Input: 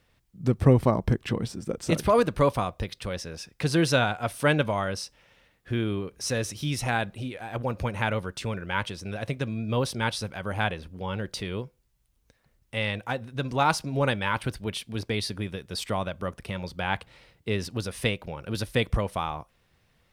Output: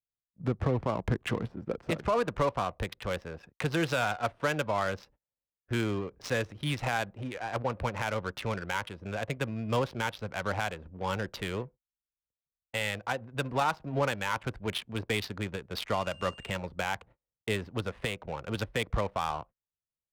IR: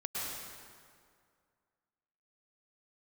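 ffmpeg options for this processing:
-filter_complex "[0:a]agate=range=-34dB:threshold=-46dB:ratio=16:detection=peak,acrossover=split=290|520|4000[a][b][c][d];[c]acontrast=79[e];[a][b][e][d]amix=inputs=4:normalize=0,asettb=1/sr,asplit=3[f][g][h];[f]atrim=end=15.934[i];[g]atrim=start=15.93:end=16.57,asetpts=PTS-STARTPTS,afade=t=in:d=0.004:c=qsin,afade=t=out:st=0.636:d=0.004:c=qsin,aeval=exprs='val(0)+0.02*sin(2*PI*2800*n/s)':c=same[j];[h]atrim=start=16.566[k];[i][j]acrossfade=d=0.004:c1=hsin:c2=qsin[l];[l][k]acrossfade=d=0.004:c1=qsin:c2=hsin,alimiter=limit=-14.5dB:level=0:latency=1:release=243,adynamicsmooth=sensitivity=4.5:basefreq=600,volume=-3.5dB"

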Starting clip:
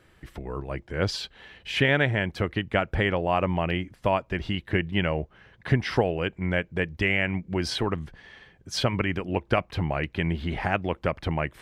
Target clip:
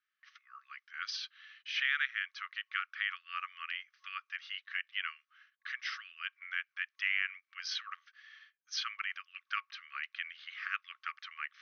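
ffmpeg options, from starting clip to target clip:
-af "agate=range=-18dB:threshold=-51dB:ratio=16:detection=peak,afftfilt=real='re*between(b*sr/4096,1100,6400)':imag='im*between(b*sr/4096,1100,6400)':win_size=4096:overlap=0.75,volume=-6.5dB"

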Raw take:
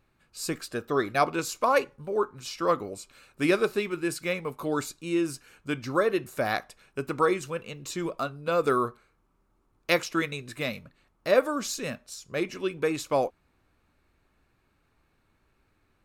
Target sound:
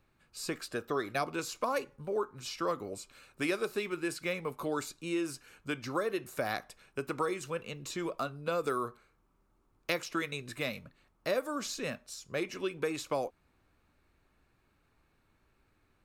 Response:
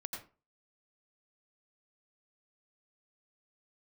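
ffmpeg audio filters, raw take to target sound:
-filter_complex "[0:a]acrossover=split=350|4900[a][b][c];[a]acompressor=threshold=-39dB:ratio=4[d];[b]acompressor=threshold=-29dB:ratio=4[e];[c]acompressor=threshold=-42dB:ratio=4[f];[d][e][f]amix=inputs=3:normalize=0,volume=-2dB"

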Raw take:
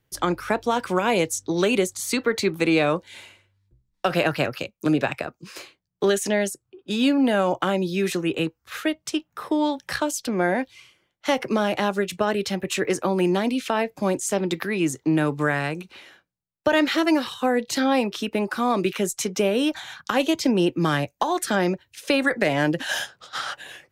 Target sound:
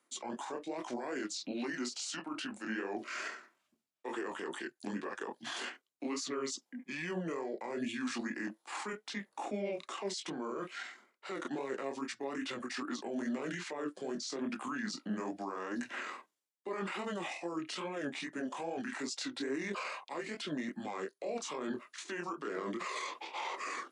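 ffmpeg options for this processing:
-af "highpass=f=410:w=0.5412,highpass=f=410:w=1.3066,equalizer=f=11k:t=o:w=0.29:g=5,bandreject=f=3.9k:w=27,areverse,acompressor=threshold=-35dB:ratio=10,areverse,alimiter=level_in=12dB:limit=-24dB:level=0:latency=1:release=36,volume=-12dB,flanger=delay=19:depth=5.4:speed=2.4,asetrate=29433,aresample=44100,atempo=1.49831,volume=9dB"

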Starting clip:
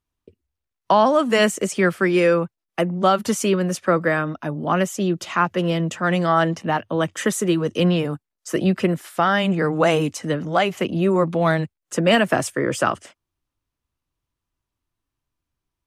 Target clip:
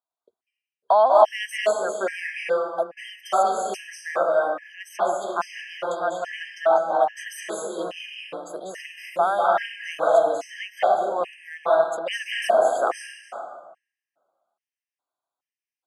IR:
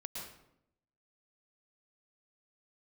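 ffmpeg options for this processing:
-filter_complex "[0:a]highpass=f=690:t=q:w=3.9[a];[1:a]atrim=start_sample=2205,asetrate=24255,aresample=44100[b];[a][b]afir=irnorm=-1:irlink=0,afftfilt=real='re*gt(sin(2*PI*1.2*pts/sr)*(1-2*mod(floor(b*sr/1024/1600),2)),0)':imag='im*gt(sin(2*PI*1.2*pts/sr)*(1-2*mod(floor(b*sr/1024/1600),2)),0)':win_size=1024:overlap=0.75,volume=-7dB"

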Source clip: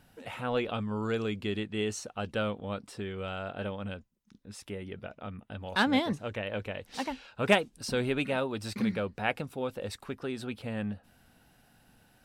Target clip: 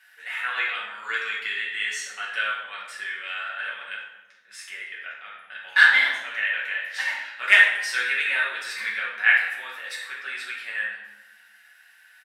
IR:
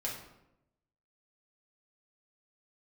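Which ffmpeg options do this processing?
-filter_complex "[0:a]highpass=f=1.8k:t=q:w=5.1,asplit=2[a][b];[b]adelay=24,volume=-13.5dB[c];[a][c]amix=inputs=2:normalize=0[d];[1:a]atrim=start_sample=2205,asetrate=31311,aresample=44100[e];[d][e]afir=irnorm=-1:irlink=0,volume=2dB"

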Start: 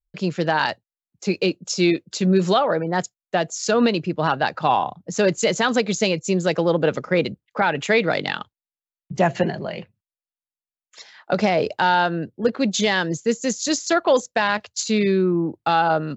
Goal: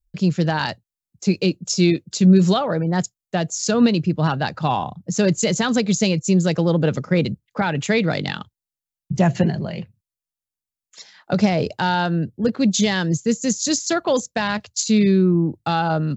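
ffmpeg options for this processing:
-af "bass=f=250:g=14,treble=f=4k:g=8,volume=-3.5dB"

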